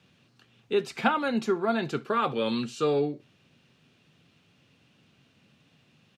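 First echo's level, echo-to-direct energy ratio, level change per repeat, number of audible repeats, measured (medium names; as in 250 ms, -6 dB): -23.0 dB, -23.0 dB, no regular repeats, 1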